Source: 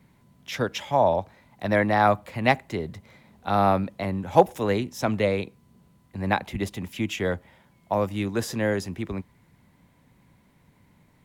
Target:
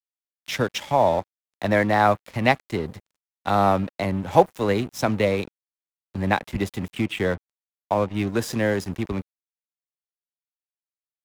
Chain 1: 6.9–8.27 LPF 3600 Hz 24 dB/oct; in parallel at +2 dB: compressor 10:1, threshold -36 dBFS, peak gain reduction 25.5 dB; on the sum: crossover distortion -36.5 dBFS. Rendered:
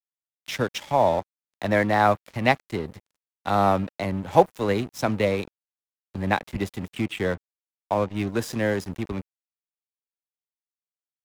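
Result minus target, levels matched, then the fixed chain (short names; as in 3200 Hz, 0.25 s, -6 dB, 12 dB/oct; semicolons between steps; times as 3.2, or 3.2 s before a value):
compressor: peak gain reduction +6.5 dB
6.9–8.27 LPF 3600 Hz 24 dB/oct; in parallel at +2 dB: compressor 10:1, threshold -29 dBFS, peak gain reduction 19 dB; on the sum: crossover distortion -36.5 dBFS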